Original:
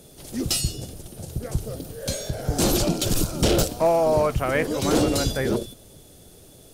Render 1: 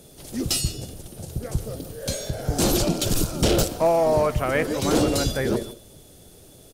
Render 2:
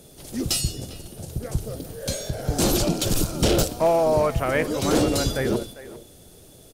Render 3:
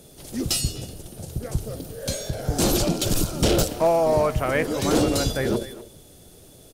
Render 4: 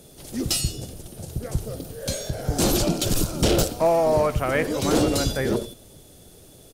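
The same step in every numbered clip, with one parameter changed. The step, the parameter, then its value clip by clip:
far-end echo of a speakerphone, delay time: 150, 400, 250, 90 milliseconds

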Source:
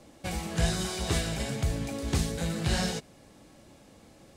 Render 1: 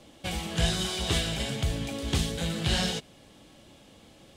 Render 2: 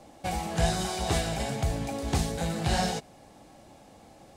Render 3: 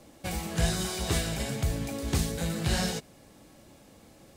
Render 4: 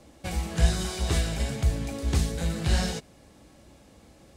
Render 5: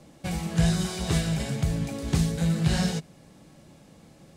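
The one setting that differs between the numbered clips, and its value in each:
parametric band, centre frequency: 3,200, 770, 15,000, 62, 160 Hertz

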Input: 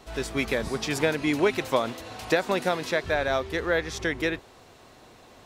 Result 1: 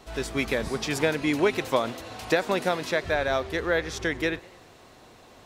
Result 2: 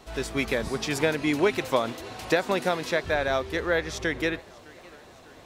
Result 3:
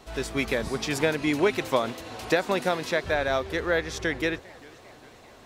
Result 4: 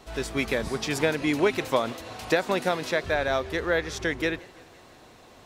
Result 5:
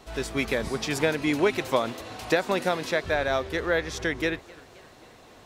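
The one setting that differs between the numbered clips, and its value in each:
feedback echo with a swinging delay time, delay time: 97, 608, 398, 169, 261 milliseconds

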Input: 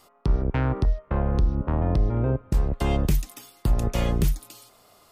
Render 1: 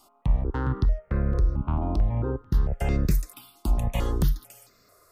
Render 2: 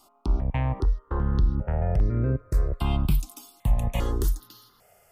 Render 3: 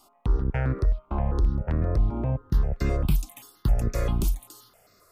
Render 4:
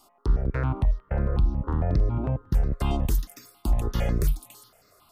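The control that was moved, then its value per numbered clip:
step-sequenced phaser, speed: 4.5, 2.5, 7.6, 11 Hertz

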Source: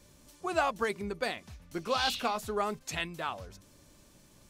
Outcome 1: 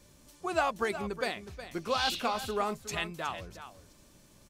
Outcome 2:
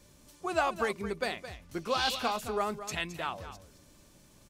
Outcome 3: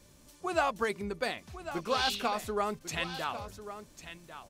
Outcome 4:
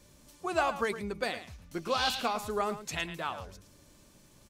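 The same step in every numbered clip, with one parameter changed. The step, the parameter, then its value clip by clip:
single-tap delay, delay time: 365, 217, 1,097, 110 milliseconds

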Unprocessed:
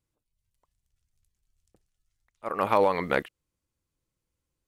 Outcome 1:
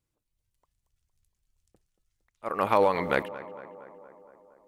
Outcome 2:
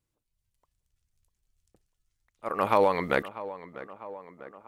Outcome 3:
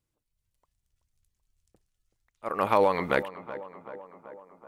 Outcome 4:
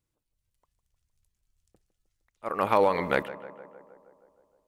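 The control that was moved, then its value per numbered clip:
tape delay, delay time: 232, 647, 381, 156 milliseconds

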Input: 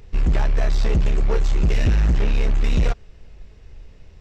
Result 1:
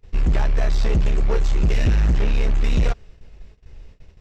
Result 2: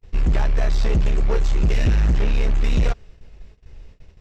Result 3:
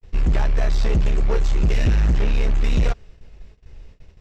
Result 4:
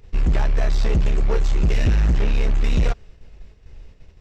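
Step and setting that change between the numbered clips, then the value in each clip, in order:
noise gate, range: −21, −37, −60, −6 decibels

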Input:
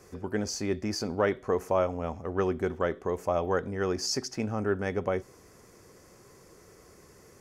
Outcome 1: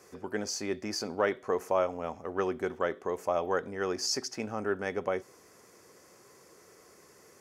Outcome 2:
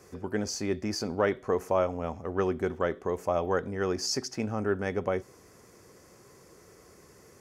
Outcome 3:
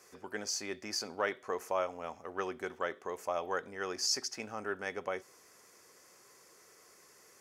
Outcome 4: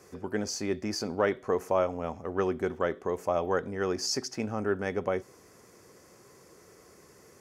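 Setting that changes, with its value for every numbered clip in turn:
high-pass filter, corner frequency: 380, 56, 1,300, 140 Hertz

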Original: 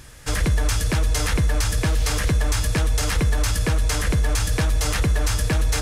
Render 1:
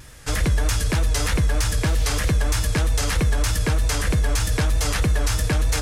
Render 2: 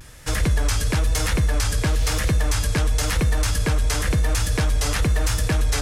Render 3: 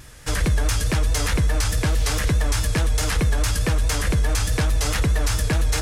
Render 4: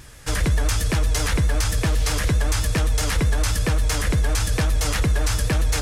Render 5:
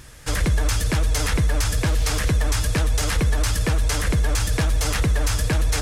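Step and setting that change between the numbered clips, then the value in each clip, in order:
pitch vibrato, speed: 3.2, 1, 4.7, 7.7, 15 Hertz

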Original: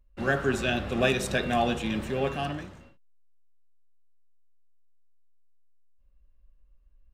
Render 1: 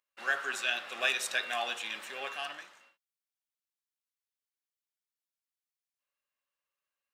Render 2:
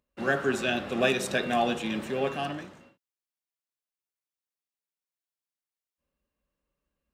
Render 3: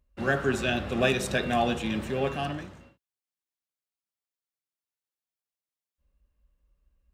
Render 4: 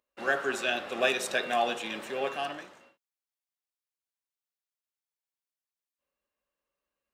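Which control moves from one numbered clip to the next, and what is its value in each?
high-pass filter, corner frequency: 1,200, 180, 51, 480 Hertz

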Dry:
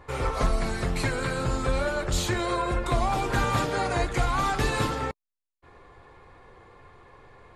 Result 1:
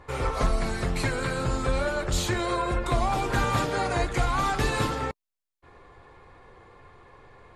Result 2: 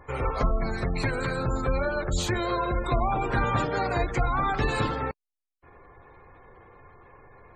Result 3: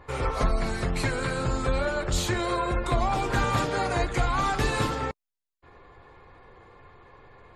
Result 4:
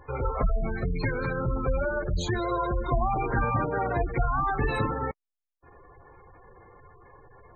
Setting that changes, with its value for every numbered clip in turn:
gate on every frequency bin, under each frame's peak: −55, −25, −40, −15 decibels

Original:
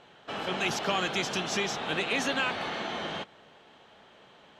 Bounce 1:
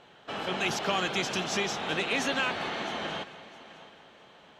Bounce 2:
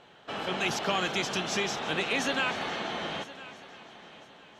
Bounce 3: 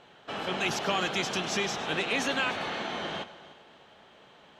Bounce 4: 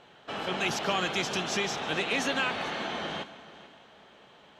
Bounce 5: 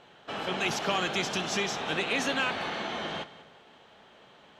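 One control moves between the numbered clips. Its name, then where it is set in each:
echo machine with several playback heads, delay time: 220, 336, 100, 147, 64 milliseconds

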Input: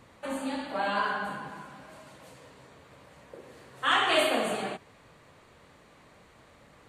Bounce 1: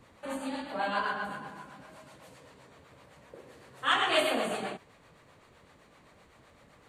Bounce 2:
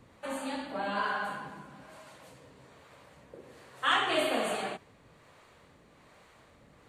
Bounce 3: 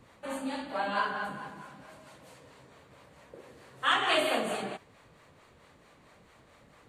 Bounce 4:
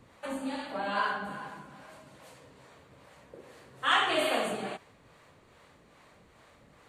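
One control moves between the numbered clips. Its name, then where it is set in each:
two-band tremolo in antiphase, speed: 7.8, 1.2, 4.5, 2.4 Hertz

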